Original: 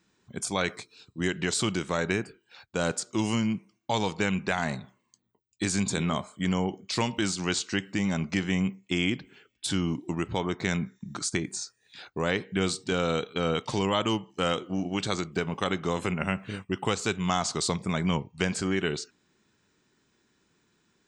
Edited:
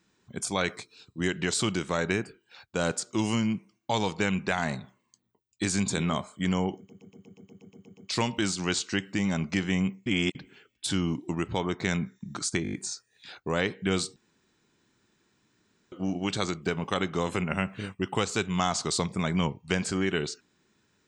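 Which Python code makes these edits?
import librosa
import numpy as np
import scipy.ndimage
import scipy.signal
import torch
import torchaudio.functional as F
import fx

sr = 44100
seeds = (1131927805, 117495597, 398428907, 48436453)

y = fx.edit(x, sr, fx.stutter(start_s=6.77, slice_s=0.12, count=11),
    fx.reverse_span(start_s=8.86, length_s=0.29),
    fx.stutter(start_s=11.43, slice_s=0.02, count=6),
    fx.room_tone_fill(start_s=12.86, length_s=1.76), tone=tone)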